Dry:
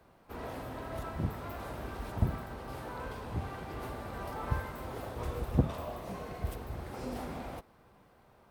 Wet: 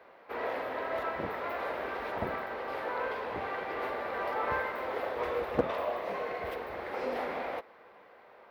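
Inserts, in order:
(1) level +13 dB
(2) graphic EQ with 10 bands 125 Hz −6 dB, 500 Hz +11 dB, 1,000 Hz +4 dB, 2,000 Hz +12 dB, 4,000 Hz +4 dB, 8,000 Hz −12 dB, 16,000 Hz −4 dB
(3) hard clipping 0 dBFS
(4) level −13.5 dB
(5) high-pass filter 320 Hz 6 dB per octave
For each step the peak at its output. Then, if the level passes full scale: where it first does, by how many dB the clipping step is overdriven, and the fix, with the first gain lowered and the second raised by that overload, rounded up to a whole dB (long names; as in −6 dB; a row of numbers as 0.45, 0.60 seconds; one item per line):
+0.5, +4.0, 0.0, −13.5, −11.5 dBFS
step 1, 4.0 dB
step 1 +9 dB, step 4 −9.5 dB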